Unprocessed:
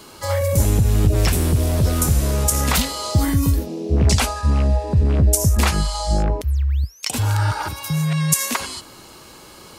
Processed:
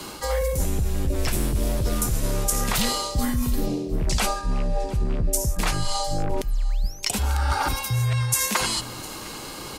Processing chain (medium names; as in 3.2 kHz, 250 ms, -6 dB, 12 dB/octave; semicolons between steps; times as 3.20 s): hum notches 60/120 Hz; reverse; compression 6:1, threshold -27 dBFS, peak gain reduction 15.5 dB; reverse; delay 707 ms -20.5 dB; frequency shift -35 Hz; trim +6.5 dB